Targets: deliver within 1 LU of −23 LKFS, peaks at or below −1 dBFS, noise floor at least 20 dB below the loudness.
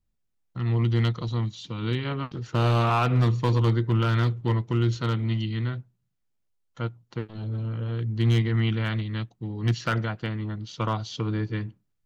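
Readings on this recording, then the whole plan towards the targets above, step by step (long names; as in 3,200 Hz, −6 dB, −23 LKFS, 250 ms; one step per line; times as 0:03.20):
share of clipped samples 0.6%; peaks flattened at −15.5 dBFS; integrated loudness −26.5 LKFS; sample peak −15.5 dBFS; target loudness −23.0 LKFS
→ clipped peaks rebuilt −15.5 dBFS
level +3.5 dB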